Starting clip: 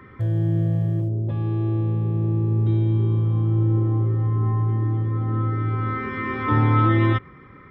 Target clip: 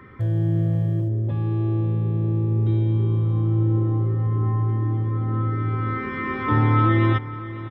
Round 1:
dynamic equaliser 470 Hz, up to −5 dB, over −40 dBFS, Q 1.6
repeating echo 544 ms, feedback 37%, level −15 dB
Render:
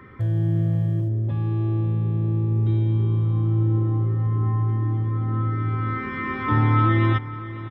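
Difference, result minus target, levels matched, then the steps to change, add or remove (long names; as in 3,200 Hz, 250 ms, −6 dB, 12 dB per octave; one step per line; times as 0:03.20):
500 Hz band −2.5 dB
remove: dynamic equaliser 470 Hz, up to −5 dB, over −40 dBFS, Q 1.6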